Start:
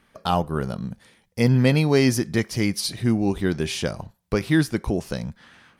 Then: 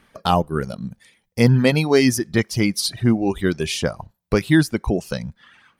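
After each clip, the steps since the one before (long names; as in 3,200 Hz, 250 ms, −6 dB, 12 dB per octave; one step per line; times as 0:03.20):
reverb reduction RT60 1.3 s
level +4.5 dB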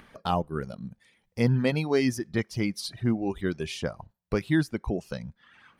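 high-shelf EQ 5,100 Hz −8 dB
upward compression, threshold −35 dBFS
level −8.5 dB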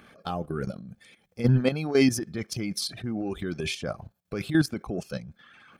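transient designer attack −6 dB, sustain +7 dB
notch comb filter 950 Hz
output level in coarse steps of 12 dB
level +6 dB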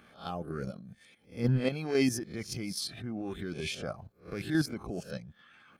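peak hold with a rise ahead of every peak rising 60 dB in 0.31 s
level −6.5 dB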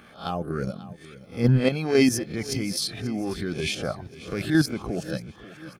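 repeating echo 538 ms, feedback 49%, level −17 dB
level +8 dB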